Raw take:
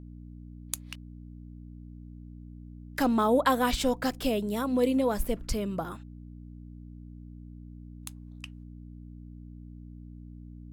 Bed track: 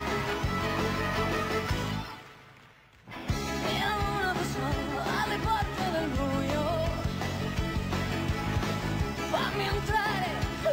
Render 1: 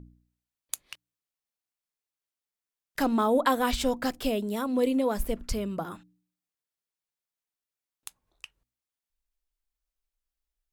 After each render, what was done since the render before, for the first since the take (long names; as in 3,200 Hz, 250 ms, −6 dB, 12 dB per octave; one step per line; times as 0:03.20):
hum removal 60 Hz, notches 5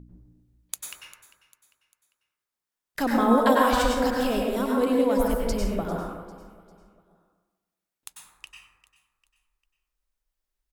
repeating echo 398 ms, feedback 42%, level −18 dB
dense smooth reverb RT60 1.2 s, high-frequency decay 0.35×, pre-delay 85 ms, DRR −2.5 dB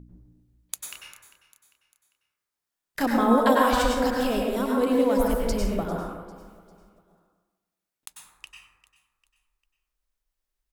0:00.90–0:03.06: double-tracking delay 29 ms −4.5 dB
0:04.91–0:05.85: mu-law and A-law mismatch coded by mu
0:06.36–0:08.16: one scale factor per block 5 bits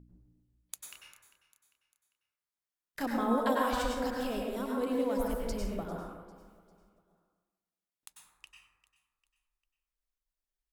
level −9.5 dB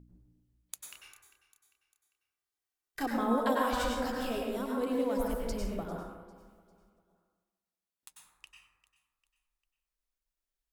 0:01.03–0:03.11: comb filter 2.6 ms, depth 57%
0:03.78–0:04.57: double-tracking delay 17 ms −4 dB
0:06.03–0:08.11: notch comb filter 150 Hz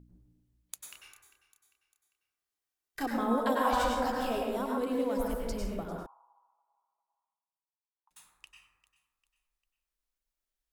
0:03.65–0:04.78: parametric band 840 Hz +7.5 dB 0.96 octaves
0:06.06–0:08.11: flat-topped band-pass 940 Hz, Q 4.2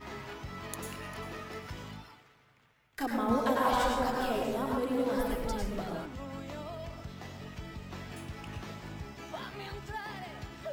mix in bed track −12.5 dB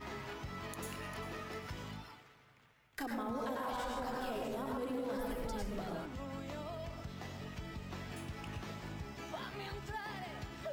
brickwall limiter −26 dBFS, peak gain reduction 9.5 dB
downward compressor 1.5 to 1, threshold −44 dBFS, peak gain reduction 5 dB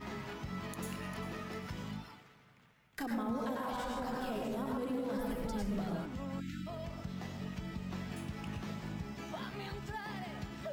parametric band 190 Hz +9 dB 0.65 octaves
0:06.40–0:06.67: time-frequency box erased 330–1,300 Hz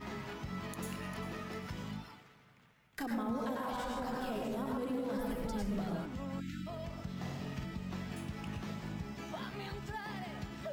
0:07.12–0:07.65: flutter between parallel walls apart 8.7 metres, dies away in 0.71 s